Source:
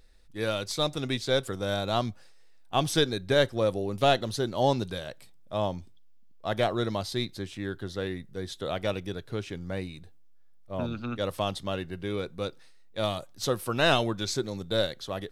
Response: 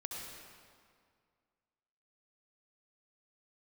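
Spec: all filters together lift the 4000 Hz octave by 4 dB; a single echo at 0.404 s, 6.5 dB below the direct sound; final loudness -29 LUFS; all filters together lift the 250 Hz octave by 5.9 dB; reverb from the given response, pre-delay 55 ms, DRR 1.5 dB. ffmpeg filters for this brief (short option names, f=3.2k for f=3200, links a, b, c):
-filter_complex "[0:a]equalizer=f=250:t=o:g=7.5,equalizer=f=4k:t=o:g=4.5,aecho=1:1:404:0.473,asplit=2[a][b];[1:a]atrim=start_sample=2205,adelay=55[c];[b][c]afir=irnorm=-1:irlink=0,volume=-1dB[d];[a][d]amix=inputs=2:normalize=0,volume=-5dB"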